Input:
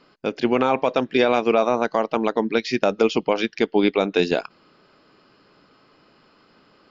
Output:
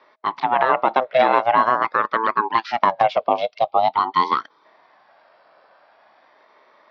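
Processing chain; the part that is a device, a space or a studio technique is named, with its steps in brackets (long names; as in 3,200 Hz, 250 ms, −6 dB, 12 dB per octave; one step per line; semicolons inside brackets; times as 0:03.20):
gain on a spectral selection 0:03.27–0:04.65, 990–2,400 Hz −19 dB
bass and treble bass −5 dB, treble −9 dB
voice changer toy (ring modulator whose carrier an LFO sweeps 460 Hz, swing 45%, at 0.45 Hz; loudspeaker in its box 450–4,700 Hz, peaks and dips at 620 Hz +8 dB, 1,100 Hz +4 dB, 2,900 Hz −6 dB)
level +5 dB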